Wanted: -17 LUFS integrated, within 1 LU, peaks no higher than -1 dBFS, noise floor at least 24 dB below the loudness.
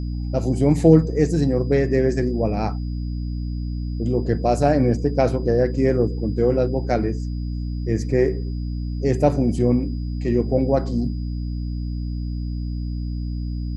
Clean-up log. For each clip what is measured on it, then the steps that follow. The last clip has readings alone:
hum 60 Hz; harmonics up to 300 Hz; hum level -24 dBFS; steady tone 4900 Hz; tone level -51 dBFS; loudness -22.0 LUFS; peak -2.0 dBFS; loudness target -17.0 LUFS
-> notches 60/120/180/240/300 Hz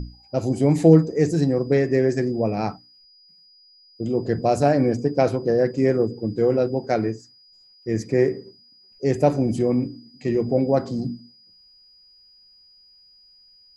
hum none; steady tone 4900 Hz; tone level -51 dBFS
-> notch 4900 Hz, Q 30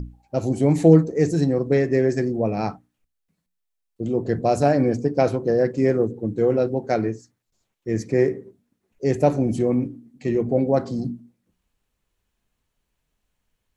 steady tone none; loudness -21.5 LUFS; peak -3.0 dBFS; loudness target -17.0 LUFS
-> gain +4.5 dB; limiter -1 dBFS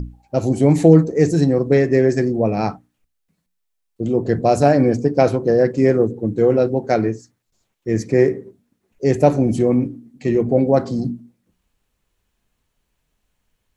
loudness -17.0 LUFS; peak -1.0 dBFS; noise floor -73 dBFS

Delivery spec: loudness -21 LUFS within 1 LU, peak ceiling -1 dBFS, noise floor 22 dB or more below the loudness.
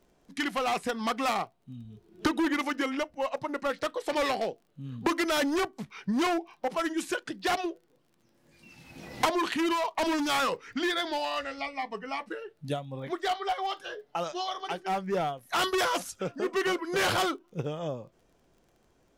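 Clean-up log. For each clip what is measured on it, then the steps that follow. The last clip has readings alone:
ticks 25/s; loudness -30.5 LUFS; peak -18.5 dBFS; loudness target -21.0 LUFS
-> de-click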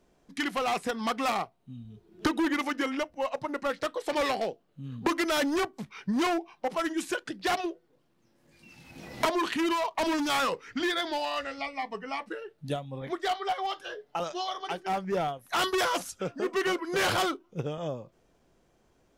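ticks 0.31/s; loudness -30.5 LUFS; peak -16.0 dBFS; loudness target -21.0 LUFS
-> gain +9.5 dB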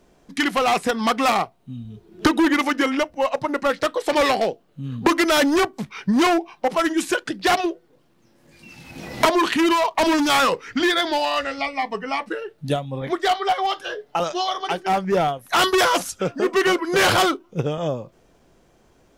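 loudness -21.0 LUFS; peak -6.5 dBFS; noise floor -59 dBFS

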